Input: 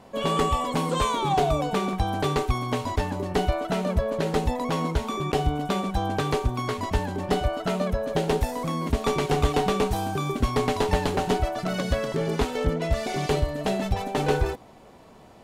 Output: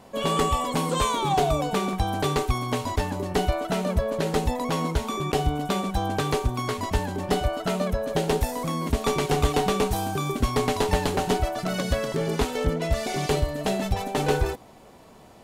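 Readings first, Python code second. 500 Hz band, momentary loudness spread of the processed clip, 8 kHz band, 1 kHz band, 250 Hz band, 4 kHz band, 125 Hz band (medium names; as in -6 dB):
0.0 dB, 4 LU, +4.0 dB, 0.0 dB, 0.0 dB, +1.5 dB, 0.0 dB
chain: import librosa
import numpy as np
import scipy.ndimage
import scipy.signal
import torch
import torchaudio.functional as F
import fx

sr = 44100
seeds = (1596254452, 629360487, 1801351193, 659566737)

y = fx.high_shelf(x, sr, hz=6200.0, db=7.0)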